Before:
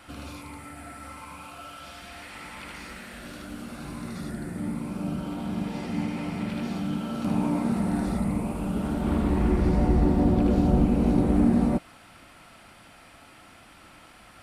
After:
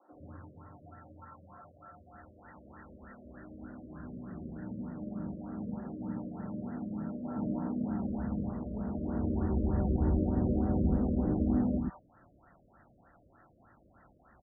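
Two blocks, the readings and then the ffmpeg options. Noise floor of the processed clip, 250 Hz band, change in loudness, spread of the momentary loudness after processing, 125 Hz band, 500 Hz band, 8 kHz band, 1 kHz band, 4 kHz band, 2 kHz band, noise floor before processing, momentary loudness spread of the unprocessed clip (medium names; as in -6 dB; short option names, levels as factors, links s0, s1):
-64 dBFS, -8.0 dB, -8.0 dB, 23 LU, -6.5 dB, -8.0 dB, under -30 dB, -10.5 dB, under -40 dB, -16.0 dB, -52 dBFS, 20 LU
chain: -filter_complex "[0:a]afreqshift=13,acrossover=split=310|1000[s0][s1][s2];[s0]adelay=110[s3];[s2]adelay=210[s4];[s3][s1][s4]amix=inputs=3:normalize=0,afftfilt=real='re*lt(b*sr/1024,630*pow(2000/630,0.5+0.5*sin(2*PI*3.3*pts/sr)))':imag='im*lt(b*sr/1024,630*pow(2000/630,0.5+0.5*sin(2*PI*3.3*pts/sr)))':win_size=1024:overlap=0.75,volume=0.473"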